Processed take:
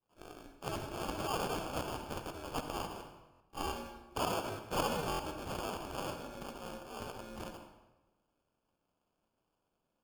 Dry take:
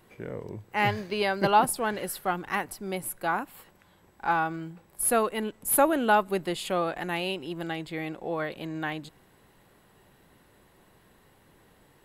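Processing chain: pre-emphasis filter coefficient 0.9; expander -57 dBFS; peaking EQ 11 kHz -4.5 dB 1.5 oct; transient shaper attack -7 dB, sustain +5 dB; in parallel at -0.5 dB: compressor with a negative ratio -40 dBFS, ratio -1; on the sum: ring modulator 130 Hz; sample-and-hold 27×; tape speed +20%; on a send at -6 dB: reverberation RT60 1.1 s, pre-delay 47 ms; on the sum: buffer glitch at 3.31/5.10 s, samples 1024, times 3

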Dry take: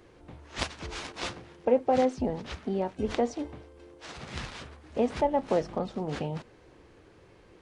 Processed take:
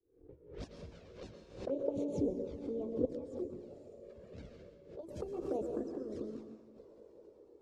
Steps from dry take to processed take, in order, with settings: pitch bend over the whole clip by +7.5 st starting unshifted; level-controlled noise filter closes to 1.7 kHz, open at -25.5 dBFS; expander -43 dBFS; FFT filter 160 Hz 0 dB, 460 Hz +10 dB, 780 Hz -14 dB, 3.2 kHz -14 dB, 5.4 kHz -8 dB; echo that smears into a reverb 548 ms, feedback 53%, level -13 dB; dynamic bell 2.2 kHz, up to -5 dB, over -45 dBFS, Q 0.74; square tremolo 0.59 Hz, depth 65%, duty 80%; touch-sensitive flanger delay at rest 2.6 ms, full sweep at -22.5 dBFS; harmonic-percussive split harmonic -11 dB; reverberation RT60 1.0 s, pre-delay 106 ms, DRR 5.5 dB; swell ahead of each attack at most 110 dB/s; trim -4 dB

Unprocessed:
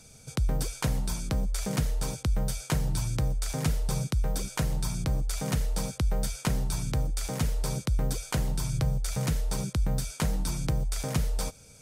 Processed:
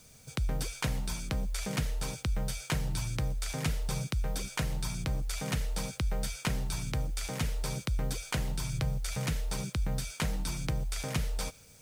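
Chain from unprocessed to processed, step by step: dynamic bell 2.5 kHz, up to +7 dB, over -53 dBFS, Q 0.78; in parallel at -8 dB: word length cut 8-bit, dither triangular; on the sum: trim -7.5 dB

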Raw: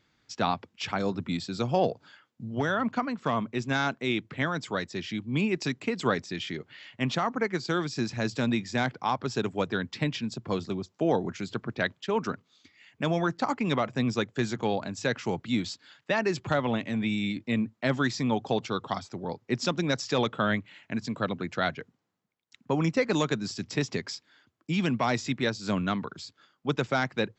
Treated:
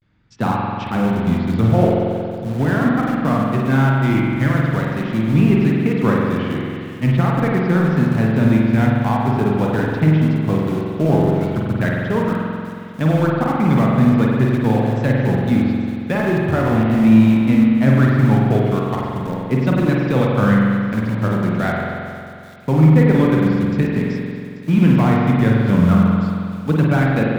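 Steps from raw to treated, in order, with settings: low-pass that closes with the level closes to 2.8 kHz, closed at -25.5 dBFS; tone controls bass +12 dB, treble -12 dB; vibrato 0.42 Hz 83 cents; in parallel at -7 dB: small samples zeroed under -23.5 dBFS; on the sum: feedback echo behind a high-pass 838 ms, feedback 55%, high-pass 4.1 kHz, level -10.5 dB; spring tank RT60 2.3 s, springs 45 ms, chirp 25 ms, DRR -3 dB

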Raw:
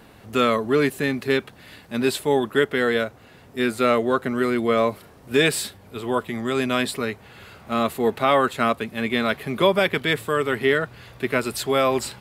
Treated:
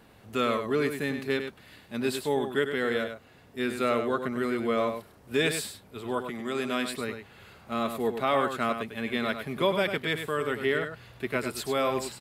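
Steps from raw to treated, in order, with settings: 6.30–6.93 s: high-pass 170 Hz 12 dB/octave; on a send: delay 100 ms -8 dB; on the sum: trim -7.5 dB

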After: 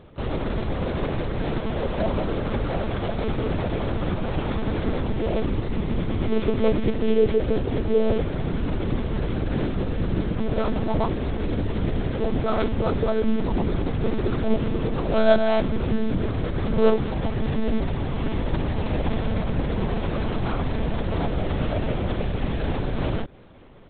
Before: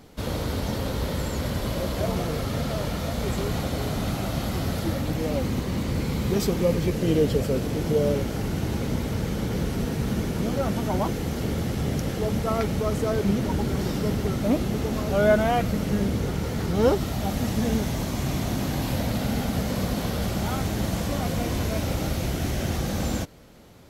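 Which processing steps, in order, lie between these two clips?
sorted samples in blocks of 8 samples; high-pass 63 Hz 24 dB/octave; monotone LPC vocoder at 8 kHz 220 Hz; trim +3 dB

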